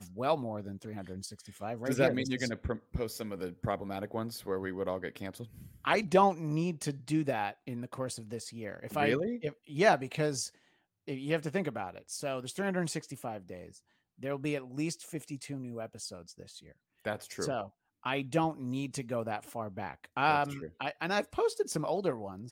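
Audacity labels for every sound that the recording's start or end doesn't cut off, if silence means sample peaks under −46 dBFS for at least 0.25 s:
11.080000	13.770000	sound
14.210000	16.720000	sound
17.050000	17.680000	sound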